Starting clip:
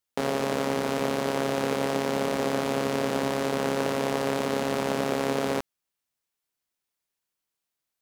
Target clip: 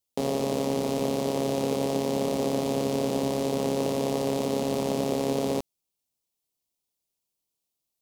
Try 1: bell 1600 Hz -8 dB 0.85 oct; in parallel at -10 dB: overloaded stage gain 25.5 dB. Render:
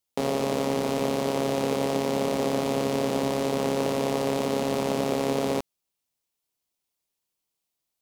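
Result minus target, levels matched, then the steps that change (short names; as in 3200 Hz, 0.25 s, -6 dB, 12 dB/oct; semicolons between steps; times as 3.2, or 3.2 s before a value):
2000 Hz band +5.0 dB
change: bell 1600 Hz -20 dB 0.85 oct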